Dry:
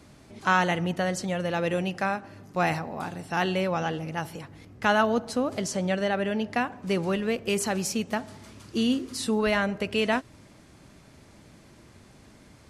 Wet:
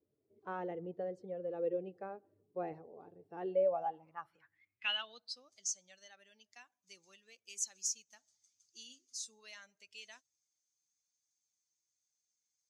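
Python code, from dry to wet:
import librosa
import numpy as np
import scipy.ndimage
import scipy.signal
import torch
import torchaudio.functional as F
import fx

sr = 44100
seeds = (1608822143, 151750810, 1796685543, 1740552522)

y = fx.bin_expand(x, sr, power=1.5)
y = fx.filter_sweep_bandpass(y, sr, from_hz=440.0, to_hz=6400.0, start_s=3.44, end_s=5.55, q=7.9)
y = y * librosa.db_to_amplitude(4.5)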